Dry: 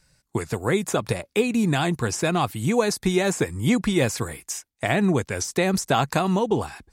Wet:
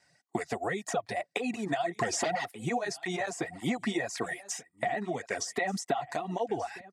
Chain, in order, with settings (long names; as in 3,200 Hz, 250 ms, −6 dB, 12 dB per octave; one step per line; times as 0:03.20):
brickwall limiter −13 dBFS, peak gain reduction 5 dB
0:01.95–0:02.50: sine wavefolder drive 6 dB → 12 dB, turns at −13 dBFS
band-pass filter 200–7,400 Hz
notch filter 4,100 Hz, Q 29
hollow resonant body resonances 710/1,900 Hz, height 16 dB, ringing for 45 ms
downward compressor 12 to 1, threshold −24 dBFS, peak gain reduction 17 dB
reverb reduction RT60 0.66 s
single-tap delay 1,184 ms −19.5 dB
through-zero flanger with one copy inverted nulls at 1.8 Hz, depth 6.7 ms